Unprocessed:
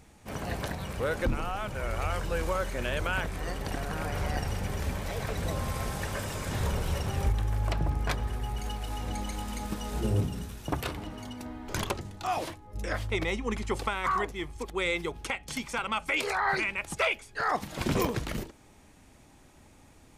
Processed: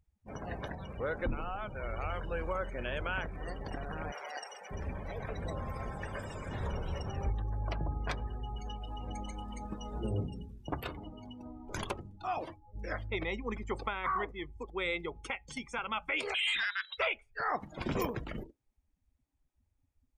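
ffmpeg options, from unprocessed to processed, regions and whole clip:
ffmpeg -i in.wav -filter_complex "[0:a]asettb=1/sr,asplit=3[link_01][link_02][link_03];[link_01]atrim=end=4.124[link_04];[link_02]atrim=start=4.12:end=4.71,asetpts=PTS-STARTPTS,afade=type=in:duration=0.004:curve=qsin,afade=type=out:start_time=0.586:duration=0.004:curve=qsin,highpass=570,highshelf=frequency=4200:gain=4.5[link_05];[link_03]atrim=start=4.706[link_06];[link_04][link_05]acrossfade=duration=0.004:curve1=hsin:curve2=qsin[link_07];[link_07][link_06]acrossfade=duration=0.004:curve1=qsin:curve2=hsin,asettb=1/sr,asplit=3[link_08][link_09][link_10];[link_08]atrim=end=16.344[link_11];[link_09]atrim=start=16.34:end=16.98,asetpts=PTS-STARTPTS,afade=type=in:duration=0.004:curve=qsin,afade=type=out:start_time=0.636:duration=0.004:curve=qsin,highshelf=frequency=2900:gain=12,lowpass=frequency=3400:width_type=q:width=0.5098,lowpass=frequency=3400:width_type=q:width=0.6013,lowpass=frequency=3400:width_type=q:width=0.9,lowpass=frequency=3400:width_type=q:width=2.563,afreqshift=-4000,volume=23dB,asoftclip=hard,volume=-23dB[link_12];[link_10]atrim=start=16.976[link_13];[link_11][link_12]acrossfade=duration=0.004:curve1=hsin:curve2=qsin[link_14];[link_14][link_13]acrossfade=duration=0.004:curve1=qsin:curve2=hsin,bandreject=frequency=4100:width=30,afftdn=noise_reduction=29:noise_floor=-40,equalizer=frequency=110:width_type=o:width=2.4:gain=-3,volume=-4.5dB" out.wav

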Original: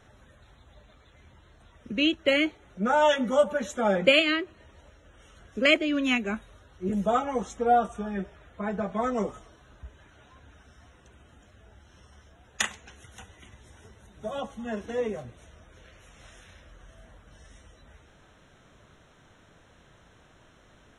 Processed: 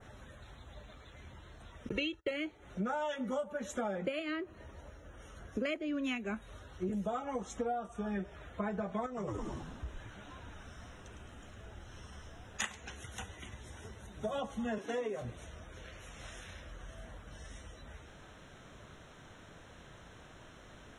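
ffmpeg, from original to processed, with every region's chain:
ffmpeg -i in.wav -filter_complex "[0:a]asettb=1/sr,asplit=3[link_01][link_02][link_03];[link_01]atrim=end=1.894[link_04];[link_02]atrim=start=1.89:end=2.31,asetpts=PTS-STARTPTS,afade=type=in:duration=0.004:curve=qsin,afade=type=out:start_time=0.416:duration=0.004:curve=qsin,agate=range=-31dB:threshold=-47dB:ratio=16:release=100:detection=peak,aecho=1:1:2.2:0.9,atrim=end_sample=18522[link_05];[link_03]atrim=start=2.306[link_06];[link_04][link_05]acrossfade=duration=0.004:curve1=hsin:curve2=qsin[link_07];[link_07][link_06]acrossfade=duration=0.004:curve1=qsin:curve2=hsin,asettb=1/sr,asplit=3[link_08][link_09][link_10];[link_08]atrim=end=4.064[link_11];[link_09]atrim=start=4.06:end=6.04,asetpts=PTS-STARTPTS,afade=type=in:duration=0.004:curve=qsin,afade=type=out:start_time=1.976:duration=0.004:curve=qsin,equalizer=frequency=3300:width_type=o:width=1.5:gain=-6.5,bandreject=frequency=7800:width=5.9[link_12];[link_10]atrim=start=6.036[link_13];[link_11][link_12]acrossfade=duration=0.004:curve1=hsin:curve2=qsin[link_14];[link_14][link_13]acrossfade=duration=0.004:curve1=qsin:curve2=hsin,asettb=1/sr,asplit=3[link_15][link_16][link_17];[link_15]atrim=end=9.064[link_18];[link_16]atrim=start=9.06:end=12.62,asetpts=PTS-STARTPTS,afade=type=in:duration=0.004:curve=qsin,afade=type=out:start_time=3.556:duration=0.004:curve=qsin,asplit=7[link_19][link_20][link_21][link_22][link_23][link_24][link_25];[link_20]adelay=107,afreqshift=-87,volume=-6dB[link_26];[link_21]adelay=214,afreqshift=-174,volume=-11.7dB[link_27];[link_22]adelay=321,afreqshift=-261,volume=-17.4dB[link_28];[link_23]adelay=428,afreqshift=-348,volume=-23dB[link_29];[link_24]adelay=535,afreqshift=-435,volume=-28.7dB[link_30];[link_25]adelay=642,afreqshift=-522,volume=-34.4dB[link_31];[link_19][link_26][link_27][link_28][link_29][link_30][link_31]amix=inputs=7:normalize=0,atrim=end_sample=156996,acompressor=threshold=-38dB:ratio=2.5:attack=3.2:release=140:knee=1:detection=peak[link_32];[link_17]atrim=start=12.616[link_33];[link_18][link_32]acrossfade=duration=0.004:curve1=hsin:curve2=qsin[link_34];[link_34][link_33]acrossfade=duration=0.004:curve1=qsin:curve2=hsin,asettb=1/sr,asplit=3[link_35][link_36][link_37];[link_35]atrim=end=14.784[link_38];[link_36]atrim=start=14.78:end=15.22,asetpts=PTS-STARTPTS,afade=type=in:duration=0.004:curve=qsin,afade=type=out:start_time=0.436:duration=0.004:curve=qsin,highpass=240,aecho=1:1:7.2:0.33,atrim=end_sample=19404[link_39];[link_37]atrim=start=15.216[link_40];[link_38][link_39]acrossfade=duration=0.004:curve1=hsin:curve2=qsin[link_41];[link_41][link_40]acrossfade=duration=0.004:curve1=qsin:curve2=hsin,adynamicequalizer=threshold=0.00708:dfrequency=4300:dqfactor=0.74:tfrequency=4300:tqfactor=0.74:attack=5:release=100:ratio=0.375:range=2.5:mode=cutabove:tftype=bell,acompressor=threshold=-36dB:ratio=12,volume=3dB" out.wav

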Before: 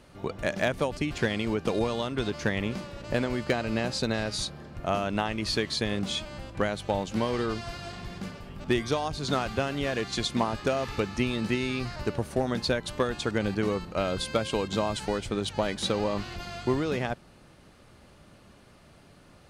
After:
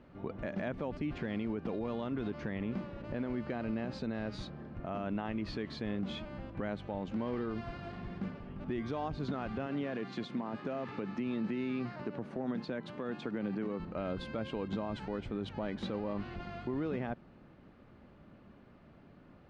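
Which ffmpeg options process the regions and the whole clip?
ffmpeg -i in.wav -filter_complex "[0:a]asettb=1/sr,asplit=3[link_01][link_02][link_03];[link_01]atrim=end=9.664[link_04];[link_02]atrim=start=9.66:end=13.8,asetpts=PTS-STARTPTS,afade=type=in:duration=0.004:curve=qsin,afade=type=out:start_time=4.136:duration=0.004:curve=qsin,highpass=frequency=130:width=0.5412,highpass=frequency=130:width=1.3066,acompressor=threshold=-29dB:ratio=3:attack=3.2:release=140:knee=1:detection=peak[link_05];[link_03]atrim=start=13.796[link_06];[link_04][link_05]acrossfade=duration=0.004:curve1=hsin:curve2=qsin[link_07];[link_07][link_06]acrossfade=duration=0.004:curve1=qsin:curve2=hsin,lowpass=2200,equalizer=frequency=240:width_type=o:width=1.2:gain=6.5,alimiter=limit=-22dB:level=0:latency=1:release=59,volume=-5.5dB" out.wav

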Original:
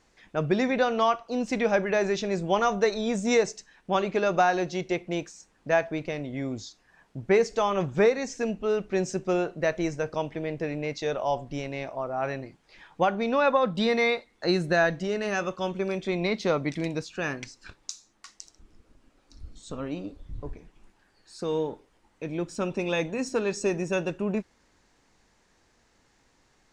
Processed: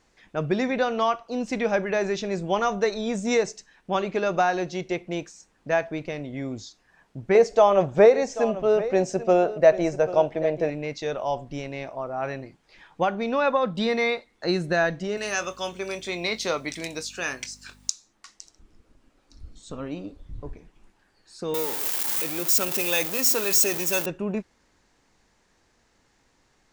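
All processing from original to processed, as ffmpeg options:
ffmpeg -i in.wav -filter_complex "[0:a]asettb=1/sr,asplit=3[link_01][link_02][link_03];[link_01]atrim=end=7.354[link_04];[link_02]atrim=start=7.35:end=10.7,asetpts=PTS-STARTPTS,afade=type=in:duration=0.004:curve=qsin,afade=type=out:start_time=3.346:duration=0.004:curve=qsin,equalizer=frequency=640:width=1.5:gain=12,aecho=1:1:788:0.188,atrim=end_sample=147735[link_05];[link_03]atrim=start=10.696[link_06];[link_04][link_05]acrossfade=duration=0.004:curve1=hsin:curve2=qsin[link_07];[link_07][link_06]acrossfade=duration=0.004:curve1=qsin:curve2=hsin,asettb=1/sr,asplit=3[link_08][link_09][link_10];[link_08]atrim=end=15.174[link_11];[link_09]atrim=start=15.17:end=17.9,asetpts=PTS-STARTPTS,afade=type=in:duration=0.004:curve=qsin,afade=type=out:start_time=2.726:duration=0.004:curve=qsin,aeval=exprs='val(0)+0.01*(sin(2*PI*50*n/s)+sin(2*PI*2*50*n/s)/2+sin(2*PI*3*50*n/s)/3+sin(2*PI*4*50*n/s)/4+sin(2*PI*5*50*n/s)/5)':channel_layout=same,aemphasis=mode=production:type=riaa,asplit=2[link_12][link_13];[link_13]adelay=23,volume=-12.5dB[link_14];[link_12][link_14]amix=inputs=2:normalize=0,atrim=end_sample=120393[link_15];[link_10]atrim=start=17.896[link_16];[link_11][link_15]acrossfade=duration=0.004:curve1=hsin:curve2=qsin[link_17];[link_17][link_16]acrossfade=duration=0.004:curve1=qsin:curve2=hsin,asettb=1/sr,asplit=3[link_18][link_19][link_20];[link_18]atrim=end=21.544[link_21];[link_19]atrim=start=21.54:end=24.06,asetpts=PTS-STARTPTS,afade=type=in:duration=0.004:curve=qsin,afade=type=out:start_time=2.516:duration=0.004:curve=qsin,aeval=exprs='val(0)+0.5*0.0282*sgn(val(0))':channel_layout=same,aemphasis=mode=production:type=riaa[link_22];[link_20]atrim=start=24.056[link_23];[link_21][link_22]acrossfade=duration=0.004:curve1=hsin:curve2=qsin[link_24];[link_24][link_23]acrossfade=duration=0.004:curve1=qsin:curve2=hsin" out.wav

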